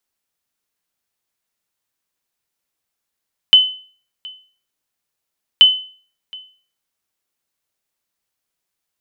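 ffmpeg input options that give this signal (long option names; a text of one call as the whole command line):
ffmpeg -f lavfi -i "aevalsrc='0.891*(sin(2*PI*3030*mod(t,2.08))*exp(-6.91*mod(t,2.08)/0.43)+0.0562*sin(2*PI*3030*max(mod(t,2.08)-0.72,0))*exp(-6.91*max(mod(t,2.08)-0.72,0)/0.43))':duration=4.16:sample_rate=44100" out.wav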